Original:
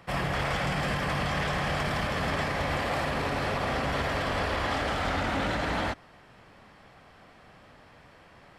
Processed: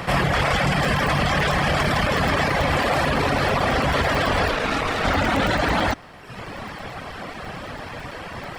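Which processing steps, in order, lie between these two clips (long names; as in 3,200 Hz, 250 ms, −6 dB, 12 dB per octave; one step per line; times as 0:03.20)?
reverb reduction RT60 0.88 s
in parallel at +2 dB: compressor whose output falls as the input rises −42 dBFS, ratio −1
0:04.51–0:05.04: on the sum: ring modulation 550 Hz
regular buffer underruns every 0.11 s, samples 128, zero, from 0:00.74
level +8.5 dB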